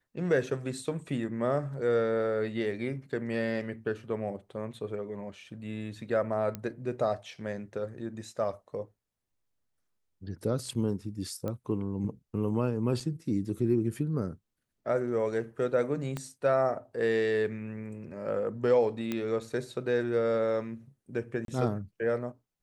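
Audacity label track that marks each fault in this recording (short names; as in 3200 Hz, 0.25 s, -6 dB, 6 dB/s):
6.550000	6.550000	pop -20 dBFS
11.480000	11.480000	pop -22 dBFS
13.000000	13.000000	gap 4.8 ms
16.170000	16.170000	pop -20 dBFS
19.120000	19.120000	pop -18 dBFS
21.450000	21.480000	gap 32 ms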